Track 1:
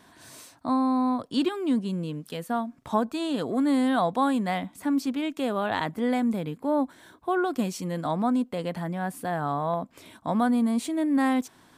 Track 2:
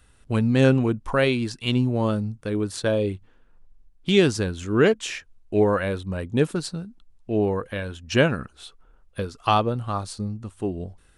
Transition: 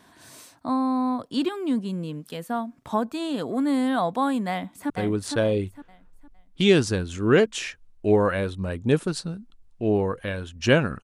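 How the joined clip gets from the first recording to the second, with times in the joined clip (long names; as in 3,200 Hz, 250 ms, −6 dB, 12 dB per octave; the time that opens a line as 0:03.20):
track 1
0:04.50–0:04.90: delay throw 460 ms, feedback 30%, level −5 dB
0:04.90: continue with track 2 from 0:02.38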